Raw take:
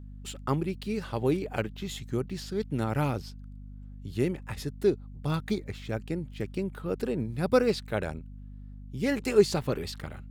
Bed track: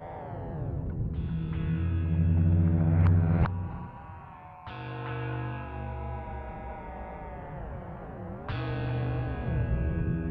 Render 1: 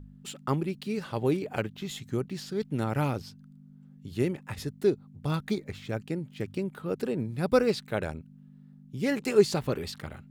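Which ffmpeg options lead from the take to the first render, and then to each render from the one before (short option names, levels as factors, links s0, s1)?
-af "bandreject=f=50:t=h:w=4,bandreject=f=100:t=h:w=4"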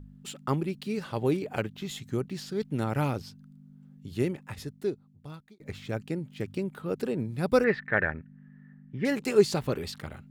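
-filter_complex "[0:a]asettb=1/sr,asplit=3[s0][s1][s2];[s0]atrim=end=7.644[s3];[s1]atrim=start=7.64:end=9.05,asetpts=PTS-STARTPTS,afade=t=in:d=0.004:c=qsin,afade=t=out:st=1.406:d=0.004:c=qsin,lowpass=f=1800:t=q:w=13[s4];[s2]atrim=start=9.046[s5];[s3][s4]acrossfade=d=0.004:c1=hsin:c2=qsin[s6];[s6][s5]acrossfade=d=0.004:c1=qsin:c2=hsin,asplit=2[s7][s8];[s7]atrim=end=5.6,asetpts=PTS-STARTPTS,afade=t=out:st=4.16:d=1.44[s9];[s8]atrim=start=5.6,asetpts=PTS-STARTPTS,afade=t=in:d=0.004:c=hsin[s10];[s9][s10]concat=n=2:v=0:a=1"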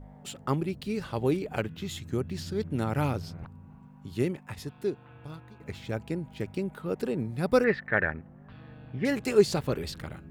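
-filter_complex "[1:a]volume=0.133[s0];[0:a][s0]amix=inputs=2:normalize=0"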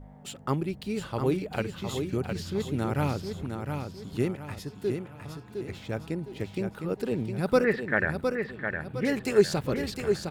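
-af "aecho=1:1:710|1420|2130|2840|3550:0.501|0.195|0.0762|0.0297|0.0116"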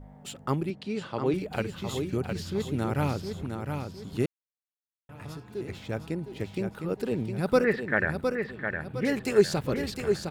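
-filter_complex "[0:a]asettb=1/sr,asplit=3[s0][s1][s2];[s0]atrim=end=0.704[s3];[s1]atrim=start=0.7:end=1.34,asetpts=PTS-STARTPTS,afade=t=in:d=0.004:c=qsin,afade=t=out:st=0.636:d=0.004:c=qsin,highpass=150,lowpass=5500[s4];[s2]atrim=start=1.336[s5];[s3][s4]acrossfade=d=0.004:c1=hsin:c2=qsin[s6];[s6][s5]acrossfade=d=0.004:c1=qsin:c2=hsin,asplit=3[s7][s8][s9];[s7]atrim=end=4.26,asetpts=PTS-STARTPTS,afade=t=out:st=4.256:d=0.004:c=hsin[s10];[s8]atrim=start=4.26:end=5.09,asetpts=PTS-STARTPTS,volume=0[s11];[s9]atrim=start=5.09,asetpts=PTS-STARTPTS,afade=t=in:d=0.004:c=hsin[s12];[s10][s11][s12]concat=n=3:v=0:a=1"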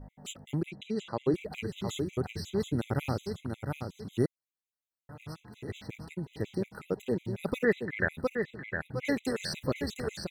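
-af "afftfilt=real='re*gt(sin(2*PI*5.5*pts/sr)*(1-2*mod(floor(b*sr/1024/2000),2)),0)':imag='im*gt(sin(2*PI*5.5*pts/sr)*(1-2*mod(floor(b*sr/1024/2000),2)),0)':win_size=1024:overlap=0.75"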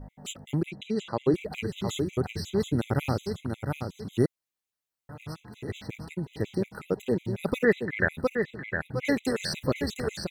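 -af "volume=1.58"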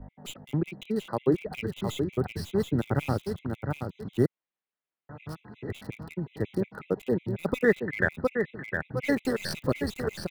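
-filter_complex "[0:a]acrossover=split=120|3400[s0][s1][s2];[s0]aeval=exprs='sgn(val(0))*max(abs(val(0))-0.00112,0)':c=same[s3];[s2]acrusher=bits=5:dc=4:mix=0:aa=0.000001[s4];[s3][s1][s4]amix=inputs=3:normalize=0"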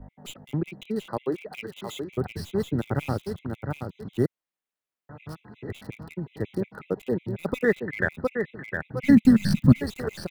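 -filter_complex "[0:a]asettb=1/sr,asplit=3[s0][s1][s2];[s0]atrim=end=1.174[s3];[s1]atrim=start=1.17:end=2.1,asetpts=PTS-STARTPTS,afade=t=in:d=0.004:c=qsin,afade=t=out:st=0.926:d=0.004:c=qsin,highpass=f=480:p=1[s4];[s2]atrim=start=2.096[s5];[s3][s4]acrossfade=d=0.004:c1=hsin:c2=qsin[s6];[s6][s5]acrossfade=d=0.004:c1=qsin:c2=hsin,asettb=1/sr,asplit=3[s7][s8][s9];[s7]atrim=end=9.034[s10];[s8]atrim=start=9.03:end=9.81,asetpts=PTS-STARTPTS,afade=t=in:d=0.004:c=qsin,afade=t=out:st=0.776:d=0.004:c=qsin,lowshelf=f=310:t=q:w=3:g=12[s11];[s9]atrim=start=9.806[s12];[s10][s11]acrossfade=d=0.004:c1=hsin:c2=qsin[s13];[s13][s12]acrossfade=d=0.004:c1=qsin:c2=hsin"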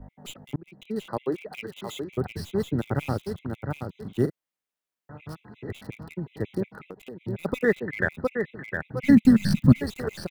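-filter_complex "[0:a]asplit=3[s0][s1][s2];[s0]afade=t=out:st=4.03:d=0.02[s3];[s1]asplit=2[s4][s5];[s5]adelay=40,volume=0.316[s6];[s4][s6]amix=inputs=2:normalize=0,afade=t=in:st=4.03:d=0.02,afade=t=out:st=5.19:d=0.02[s7];[s2]afade=t=in:st=5.19:d=0.02[s8];[s3][s7][s8]amix=inputs=3:normalize=0,asettb=1/sr,asplit=3[s9][s10][s11];[s9]atrim=end=6.734[s12];[s10]atrim=start=6.73:end=7.21,asetpts=PTS-STARTPTS,afade=t=in:d=0.004:c=qsin,afade=t=out:st=0.476:d=0.004:c=qsin,acompressor=threshold=0.0158:ratio=12:attack=3.2:release=140:knee=1:detection=peak[s13];[s11]atrim=start=7.206[s14];[s12][s13]acrossfade=d=0.004:c1=hsin:c2=qsin[s15];[s15][s14]acrossfade=d=0.004:c1=qsin:c2=hsin,asplit=2[s16][s17];[s16]atrim=end=0.56,asetpts=PTS-STARTPTS,afade=t=out:st=0.556:d=0.004:c=hsin[s18];[s17]atrim=start=0.56,asetpts=PTS-STARTPTS,afade=t=in:d=0.47[s19];[s18][s19]concat=n=2:v=0:a=1"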